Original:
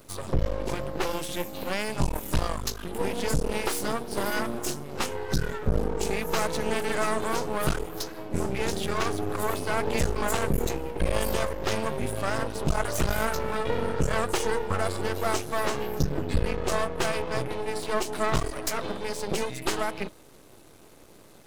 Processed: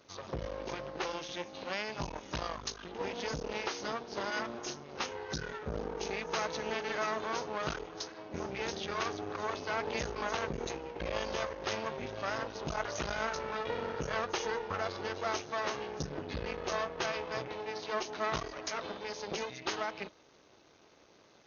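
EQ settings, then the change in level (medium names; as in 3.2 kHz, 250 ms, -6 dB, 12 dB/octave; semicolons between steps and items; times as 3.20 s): high-pass 44 Hz; brick-wall FIR low-pass 6.7 kHz; bass shelf 310 Hz -10 dB; -5.0 dB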